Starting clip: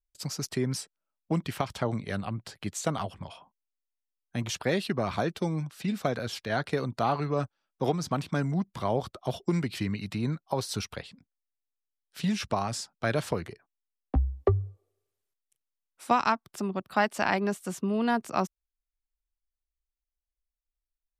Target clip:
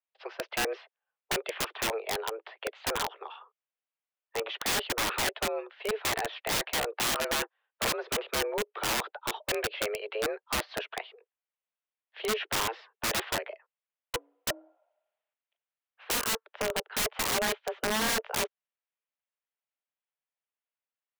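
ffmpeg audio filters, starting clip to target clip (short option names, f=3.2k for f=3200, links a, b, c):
-af "highpass=f=230:t=q:w=0.5412,highpass=f=230:t=q:w=1.307,lowpass=f=3k:t=q:w=0.5176,lowpass=f=3k:t=q:w=0.7071,lowpass=f=3k:t=q:w=1.932,afreqshift=220,aeval=exprs='(mod(21.1*val(0)+1,2)-1)/21.1':c=same,volume=3.5dB"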